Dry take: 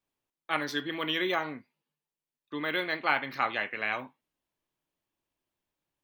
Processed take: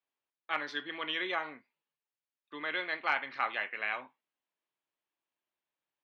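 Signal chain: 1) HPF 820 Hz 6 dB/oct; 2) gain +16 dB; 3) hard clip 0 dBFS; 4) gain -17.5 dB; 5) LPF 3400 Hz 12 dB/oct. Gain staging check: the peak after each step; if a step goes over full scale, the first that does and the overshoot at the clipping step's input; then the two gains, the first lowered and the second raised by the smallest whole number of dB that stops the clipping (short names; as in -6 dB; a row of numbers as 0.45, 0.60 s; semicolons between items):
-12.0, +4.0, 0.0, -17.5, -17.0 dBFS; step 2, 4.0 dB; step 2 +12 dB, step 4 -13.5 dB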